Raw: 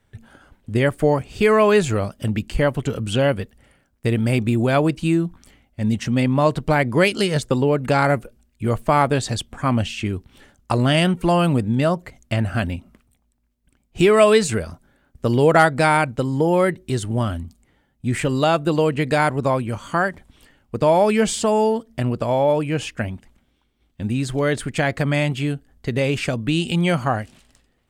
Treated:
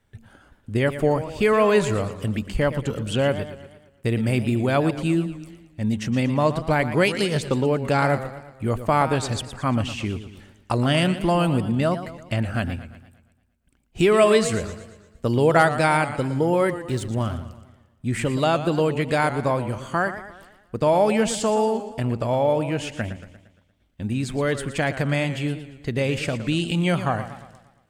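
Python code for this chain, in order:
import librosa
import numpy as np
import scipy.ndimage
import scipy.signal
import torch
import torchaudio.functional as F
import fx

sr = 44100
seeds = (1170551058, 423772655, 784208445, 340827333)

y = fx.backlash(x, sr, play_db=-35.5, at=(16.69, 17.43))
y = fx.echo_warbled(y, sr, ms=116, feedback_pct=50, rate_hz=2.8, cents=134, wet_db=-12)
y = y * librosa.db_to_amplitude(-3.0)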